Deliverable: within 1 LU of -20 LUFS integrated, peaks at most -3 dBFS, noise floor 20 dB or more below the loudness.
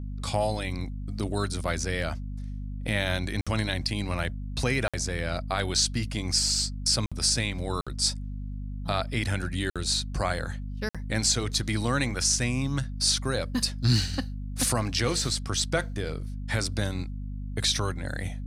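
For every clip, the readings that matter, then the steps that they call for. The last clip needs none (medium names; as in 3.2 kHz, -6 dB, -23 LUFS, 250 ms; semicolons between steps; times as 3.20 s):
dropouts 6; longest dropout 56 ms; hum 50 Hz; highest harmonic 250 Hz; hum level -32 dBFS; loudness -28.0 LUFS; peak level -11.5 dBFS; loudness target -20.0 LUFS
-> interpolate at 3.41/4.88/7.06/7.81/9.70/10.89 s, 56 ms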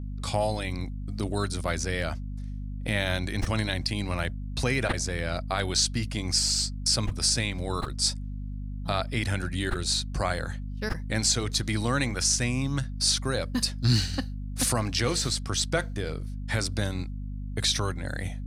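dropouts 0; hum 50 Hz; highest harmonic 250 Hz; hum level -32 dBFS
-> de-hum 50 Hz, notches 5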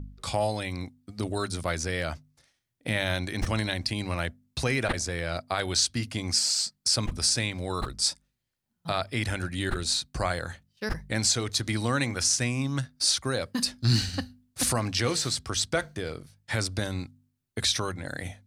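hum not found; loudness -28.0 LUFS; peak level -12.5 dBFS; loudness target -20.0 LUFS
-> trim +8 dB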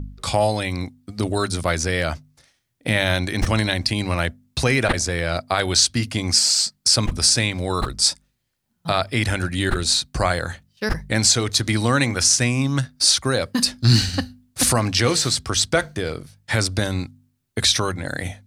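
loudness -20.0 LUFS; peak level -4.5 dBFS; noise floor -70 dBFS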